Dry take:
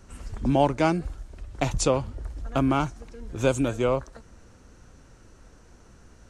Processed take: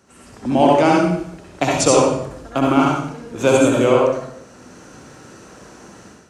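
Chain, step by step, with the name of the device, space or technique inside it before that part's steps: far laptop microphone (reverberation RT60 0.70 s, pre-delay 58 ms, DRR -3 dB; high-pass 180 Hz 12 dB/octave; level rider gain up to 11 dB)

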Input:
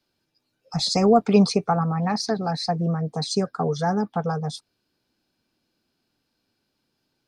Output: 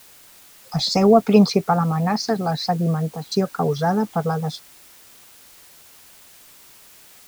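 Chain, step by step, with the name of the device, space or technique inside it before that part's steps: worn cassette (low-pass 6 kHz; wow and flutter; level dips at 3.16 s, 155 ms -6 dB; white noise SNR 26 dB); trim +3 dB

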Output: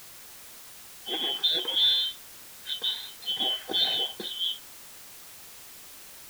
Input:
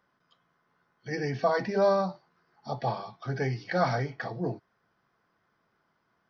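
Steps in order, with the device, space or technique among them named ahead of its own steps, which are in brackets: split-band scrambled radio (four frequency bands reordered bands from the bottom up 2413; band-pass 370–2900 Hz; white noise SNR 15 dB); trim +5 dB

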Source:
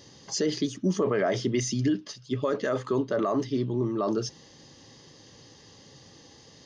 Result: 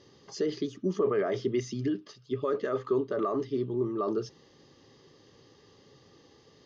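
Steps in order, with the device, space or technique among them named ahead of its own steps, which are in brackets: inside a cardboard box (low-pass 4.6 kHz 12 dB/octave; small resonant body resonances 400/1200 Hz, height 9 dB, ringing for 30 ms); trim -7 dB

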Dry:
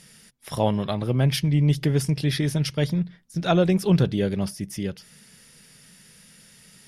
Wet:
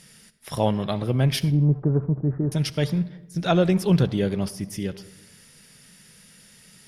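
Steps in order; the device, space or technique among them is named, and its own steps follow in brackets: 1.50–2.52 s: steep low-pass 1.3 kHz 48 dB/octave; saturated reverb return (on a send at -13.5 dB: reverberation RT60 0.90 s, pre-delay 54 ms + saturation -23 dBFS, distortion -9 dB)

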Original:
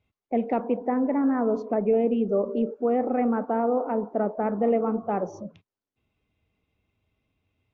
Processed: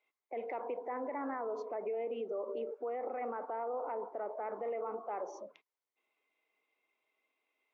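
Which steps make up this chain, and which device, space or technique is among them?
laptop speaker (high-pass 380 Hz 24 dB/octave; peaking EQ 1 kHz +5.5 dB 0.59 oct; peaking EQ 2.1 kHz +9.5 dB 0.26 oct; peak limiter -26 dBFS, peak gain reduction 12 dB); trim -5 dB

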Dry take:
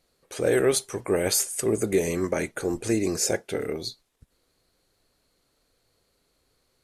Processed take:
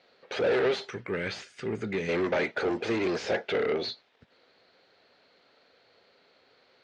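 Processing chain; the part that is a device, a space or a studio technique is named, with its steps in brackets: 0.90–2.09 s: FFT filter 150 Hz 0 dB, 870 Hz -25 dB, 1.3 kHz -9 dB; overdrive pedal into a guitar cabinet (overdrive pedal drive 28 dB, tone 2.2 kHz, clips at -10.5 dBFS; cabinet simulation 100–4500 Hz, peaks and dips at 140 Hz -5 dB, 320 Hz -5 dB, 1.1 kHz -6 dB); trim -6.5 dB

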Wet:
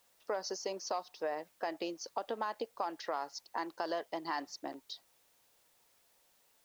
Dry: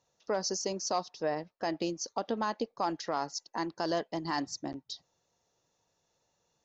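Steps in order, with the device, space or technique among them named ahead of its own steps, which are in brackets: baby monitor (band-pass 450–3700 Hz; compression, threshold -33 dBFS, peak gain reduction 7 dB; white noise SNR 30 dB); trim +1 dB

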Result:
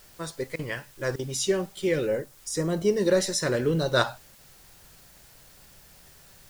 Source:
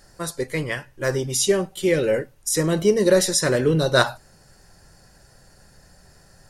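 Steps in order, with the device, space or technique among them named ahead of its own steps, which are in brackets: worn cassette (low-pass 7.9 kHz 12 dB/octave; wow and flutter; level dips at 0.56/1.16/4.35 s, 30 ms -20 dB; white noise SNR 26 dB); 2.06–2.86 s: dynamic bell 2.6 kHz, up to -6 dB, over -44 dBFS, Q 0.86; trim -5.5 dB

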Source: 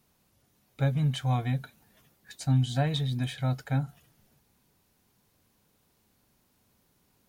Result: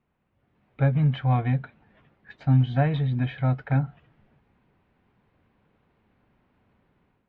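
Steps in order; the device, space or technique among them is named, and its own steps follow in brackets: action camera in a waterproof case (low-pass 2.5 kHz 24 dB/octave; level rider gain up to 9 dB; trim -4 dB; AAC 48 kbps 48 kHz)

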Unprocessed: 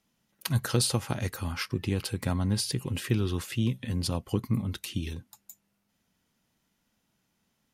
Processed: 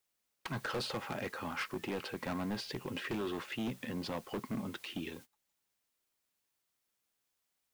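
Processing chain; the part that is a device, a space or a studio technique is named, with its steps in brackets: dynamic bell 160 Hz, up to +4 dB, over -38 dBFS, Q 1.1; aircraft radio (band-pass 360–2400 Hz; hard clipper -34 dBFS, distortion -6 dB; white noise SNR 19 dB; gate -53 dBFS, range -23 dB); trim +1.5 dB

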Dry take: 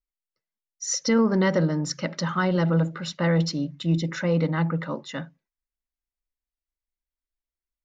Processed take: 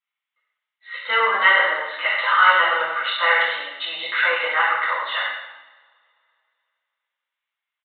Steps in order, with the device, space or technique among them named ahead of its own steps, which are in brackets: two-slope reverb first 0.93 s, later 2.7 s, from -26 dB, DRR -10 dB; musical greeting card (resampled via 8 kHz; high-pass 890 Hz 24 dB/octave; peaking EQ 2.1 kHz +4 dB 0.28 oct); trim +5.5 dB

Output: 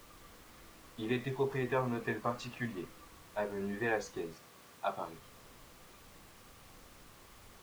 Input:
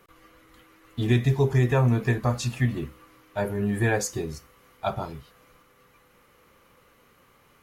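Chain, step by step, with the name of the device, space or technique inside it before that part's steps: horn gramophone (band-pass 260–3600 Hz; peaking EQ 1.1 kHz +6.5 dB 0.2 oct; wow and flutter; pink noise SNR 17 dB); 4.33–5.05 s: high-pass 130 Hz 12 dB/octave; trim -7.5 dB

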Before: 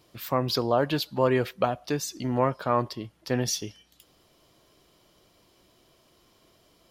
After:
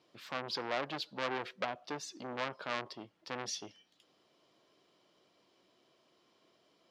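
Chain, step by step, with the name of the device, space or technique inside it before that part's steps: public-address speaker with an overloaded transformer (transformer saturation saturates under 2.7 kHz; band-pass 210–5200 Hz); trim -7 dB

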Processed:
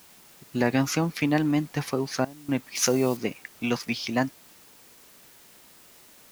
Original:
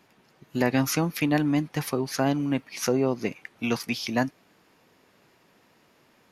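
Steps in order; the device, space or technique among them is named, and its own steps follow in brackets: worn cassette (low-pass 8.4 kHz; wow and flutter; level dips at 2.25 s, 233 ms -21 dB; white noise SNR 25 dB); 2.75–3.17 s: treble shelf 3.4 kHz +11.5 dB

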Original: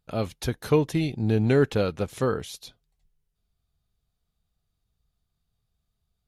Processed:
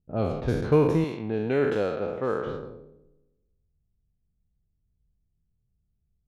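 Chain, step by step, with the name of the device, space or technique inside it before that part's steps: spectral sustain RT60 1.26 s; through cloth (treble shelf 2.5 kHz -17 dB); 1.04–2.47 s: high-pass 440 Hz 6 dB/octave; level-controlled noise filter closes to 340 Hz, open at -21 dBFS

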